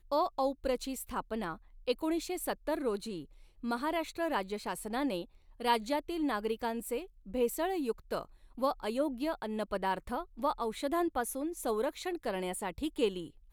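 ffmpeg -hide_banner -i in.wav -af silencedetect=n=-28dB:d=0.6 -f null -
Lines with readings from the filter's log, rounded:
silence_start: 2.96
silence_end: 3.69 | silence_duration: 0.73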